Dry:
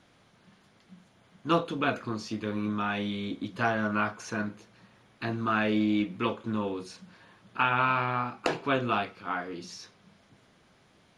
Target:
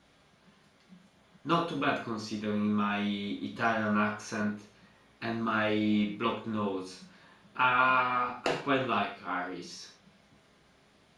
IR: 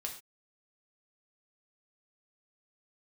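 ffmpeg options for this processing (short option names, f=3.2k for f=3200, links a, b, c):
-filter_complex "[0:a]asettb=1/sr,asplit=3[a][b][c];[a]atrim=end=7.714[d];[b]atrim=start=7.71:end=8.29,asetpts=PTS-STARTPTS,afade=t=in:d=0.004:c=qsin,afade=t=out:st=0.576:d=0.004:c=qsin,aecho=1:1:4.2:0.61,atrim=end_sample=25578[e];[c]atrim=start=8.286[f];[d][e]acrossfade=d=0.004:c1=hsin:c2=qsin[g];[g][f]acrossfade=d=0.004:c1=qsin:c2=hsin[h];[1:a]atrim=start_sample=2205[i];[h][i]afir=irnorm=-1:irlink=0"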